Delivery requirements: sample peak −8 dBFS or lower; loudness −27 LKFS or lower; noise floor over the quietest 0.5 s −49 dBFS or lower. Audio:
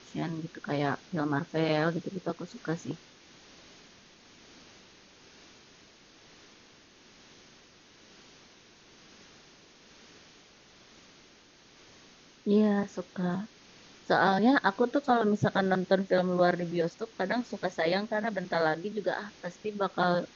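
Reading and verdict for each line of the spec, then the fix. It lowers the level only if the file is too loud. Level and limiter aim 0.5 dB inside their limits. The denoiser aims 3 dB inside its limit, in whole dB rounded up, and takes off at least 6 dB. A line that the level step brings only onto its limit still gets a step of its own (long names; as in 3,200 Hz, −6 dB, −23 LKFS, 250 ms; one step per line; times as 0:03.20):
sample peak −11.0 dBFS: in spec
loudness −29.5 LKFS: in spec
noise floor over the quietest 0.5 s −58 dBFS: in spec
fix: no processing needed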